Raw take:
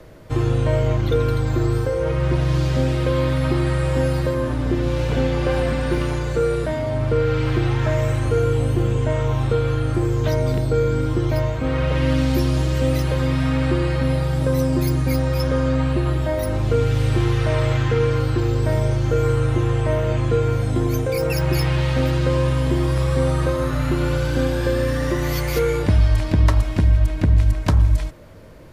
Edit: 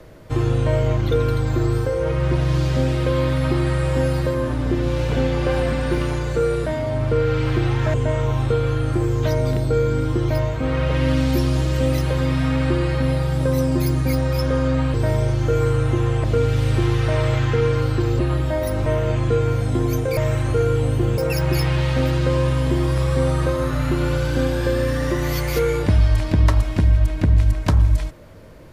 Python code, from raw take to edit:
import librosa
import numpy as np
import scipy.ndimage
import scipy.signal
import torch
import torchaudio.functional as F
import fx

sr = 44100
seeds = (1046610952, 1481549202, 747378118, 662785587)

y = fx.edit(x, sr, fx.move(start_s=7.94, length_s=1.01, to_s=21.18),
    fx.swap(start_s=15.95, length_s=0.67, other_s=18.57, other_length_s=1.3), tone=tone)